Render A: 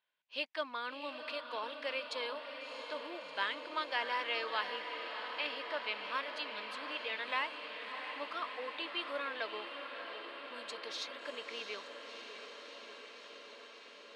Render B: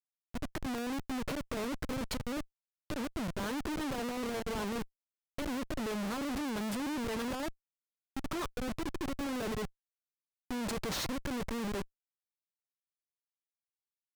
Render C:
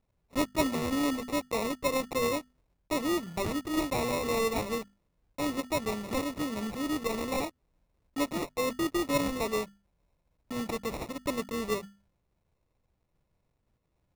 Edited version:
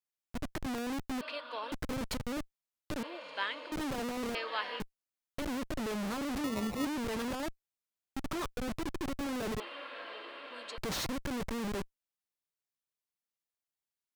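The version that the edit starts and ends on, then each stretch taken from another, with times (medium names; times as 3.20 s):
B
1.21–1.72 s: from A
3.03–3.72 s: from A
4.35–4.80 s: from A
6.44–6.85 s: from C
9.60–10.78 s: from A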